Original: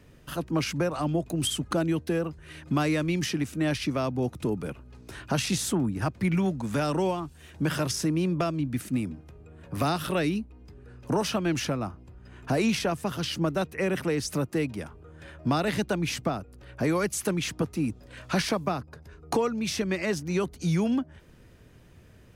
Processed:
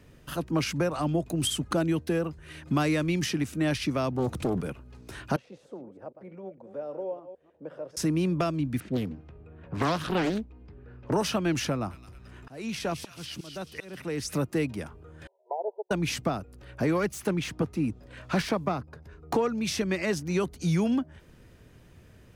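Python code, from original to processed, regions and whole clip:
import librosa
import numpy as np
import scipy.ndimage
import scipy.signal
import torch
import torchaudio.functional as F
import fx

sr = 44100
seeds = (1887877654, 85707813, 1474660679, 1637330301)

y = fx.chain(x, sr, fx.transient(attack_db=1, sustain_db=8),
    fx.doppler_dist(depth_ms=0.6), at=(4.12, 4.61))
y = fx.chain(y, sr, fx.reverse_delay(ms=153, wet_db=-11.5),
    fx.bandpass_q(hz=530.0, q=5.6), at=(5.36, 7.97))
y = fx.chain(y, sr, fx.env_lowpass(base_hz=2400.0, full_db=-23.0),
    fx.high_shelf(hz=9700.0, db=-9.5),
    fx.doppler_dist(depth_ms=0.75), at=(8.8, 11.13))
y = fx.chain(y, sr, fx.auto_swell(attack_ms=575.0),
    fx.echo_wet_highpass(ms=217, feedback_pct=49, hz=2800.0, wet_db=-5), at=(11.69, 14.38))
y = fx.chain(y, sr, fx.brickwall_bandpass(low_hz=370.0, high_hz=1000.0),
    fx.upward_expand(threshold_db=-38.0, expansion=2.5), at=(15.27, 15.91))
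y = fx.chain(y, sr, fx.self_delay(depth_ms=0.057),
    fx.high_shelf(hz=3700.0, db=-7.0), at=(16.84, 19.49))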